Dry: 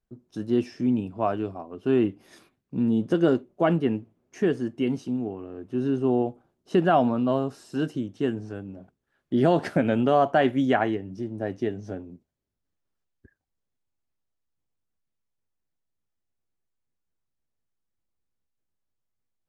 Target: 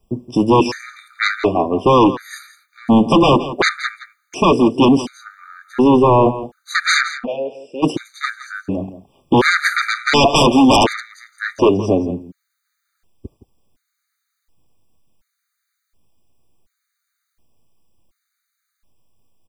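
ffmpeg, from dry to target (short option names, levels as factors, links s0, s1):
-filter_complex "[0:a]acrossover=split=230[s0][s1];[s0]acompressor=threshold=0.00631:ratio=6[s2];[s2][s1]amix=inputs=2:normalize=0,aeval=exprs='0.335*sin(PI/2*5.62*val(0)/0.335)':c=same,asplit=3[s3][s4][s5];[s3]afade=t=out:st=7.08:d=0.02[s6];[s4]asplit=3[s7][s8][s9];[s7]bandpass=f=530:t=q:w=8,volume=1[s10];[s8]bandpass=f=1840:t=q:w=8,volume=0.501[s11];[s9]bandpass=f=2480:t=q:w=8,volume=0.355[s12];[s10][s11][s12]amix=inputs=3:normalize=0,afade=t=in:st=7.08:d=0.02,afade=t=out:st=7.82:d=0.02[s13];[s5]afade=t=in:st=7.82:d=0.02[s14];[s6][s13][s14]amix=inputs=3:normalize=0,aecho=1:1:168:0.2,afftfilt=real='re*gt(sin(2*PI*0.69*pts/sr)*(1-2*mod(floor(b*sr/1024/1200),2)),0)':imag='im*gt(sin(2*PI*0.69*pts/sr)*(1-2*mod(floor(b*sr/1024/1200),2)),0)':win_size=1024:overlap=0.75,volume=1.41"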